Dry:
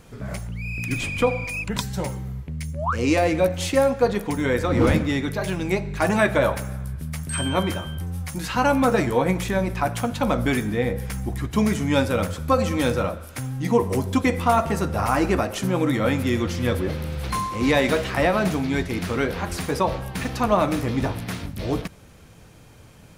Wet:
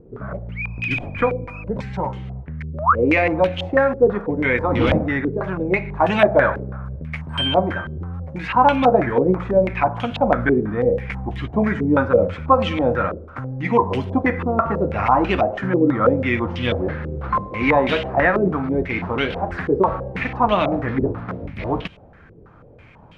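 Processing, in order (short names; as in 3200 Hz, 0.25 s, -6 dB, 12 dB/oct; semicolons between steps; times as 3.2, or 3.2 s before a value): stepped low-pass 6.1 Hz 400–3000 Hz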